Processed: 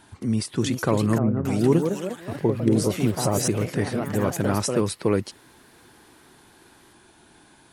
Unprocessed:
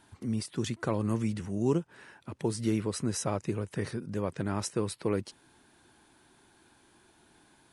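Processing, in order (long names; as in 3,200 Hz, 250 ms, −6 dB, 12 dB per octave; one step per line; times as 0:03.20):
delay with pitch and tempo change per echo 434 ms, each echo +3 semitones, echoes 3, each echo −6 dB
0:01.18–0:03.48: multiband delay without the direct sound lows, highs 270 ms, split 1,400 Hz
level +8 dB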